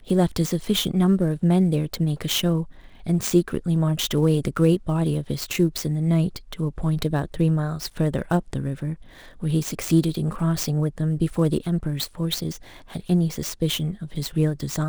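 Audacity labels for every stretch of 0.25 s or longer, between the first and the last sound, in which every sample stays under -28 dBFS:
2.630000	3.070000	silence
8.940000	9.430000	silence
12.560000	12.950000	silence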